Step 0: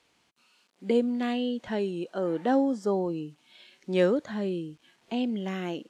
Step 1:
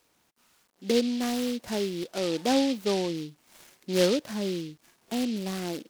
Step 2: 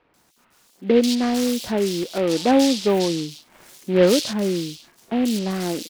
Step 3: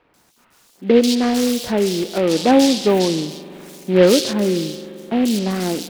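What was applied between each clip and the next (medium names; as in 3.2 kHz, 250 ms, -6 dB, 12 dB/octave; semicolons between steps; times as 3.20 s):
delay time shaken by noise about 3.5 kHz, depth 0.1 ms
bands offset in time lows, highs 140 ms, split 2.8 kHz; trim +8 dB
spring tank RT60 3.7 s, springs 43 ms, chirp 75 ms, DRR 14.5 dB; trim +3.5 dB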